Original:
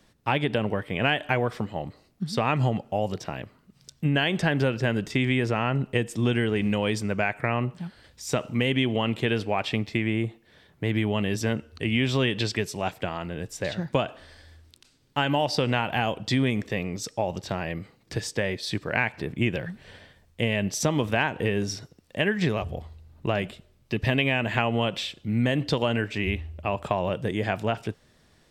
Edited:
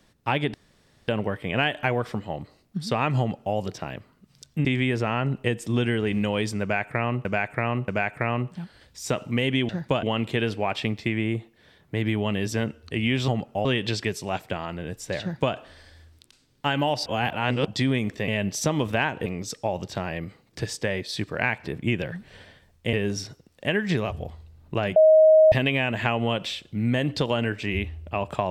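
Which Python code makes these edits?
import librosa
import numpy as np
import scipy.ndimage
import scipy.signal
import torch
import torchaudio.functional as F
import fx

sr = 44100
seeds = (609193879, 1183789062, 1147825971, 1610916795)

y = fx.edit(x, sr, fx.insert_room_tone(at_s=0.54, length_s=0.54),
    fx.duplicate(start_s=2.65, length_s=0.37, to_s=12.17),
    fx.cut(start_s=4.11, length_s=1.03),
    fx.repeat(start_s=7.11, length_s=0.63, count=3),
    fx.duplicate(start_s=13.73, length_s=0.34, to_s=8.92),
    fx.reverse_span(start_s=15.58, length_s=0.59),
    fx.move(start_s=20.47, length_s=0.98, to_s=16.8),
    fx.bleep(start_s=23.48, length_s=0.56, hz=629.0, db=-11.0), tone=tone)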